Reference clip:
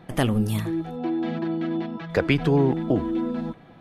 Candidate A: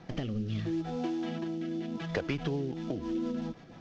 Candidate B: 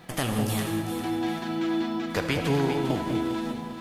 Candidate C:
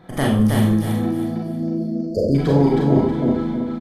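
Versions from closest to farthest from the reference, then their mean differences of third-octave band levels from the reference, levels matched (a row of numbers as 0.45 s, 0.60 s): A, C, B; 5.0 dB, 7.0 dB, 10.0 dB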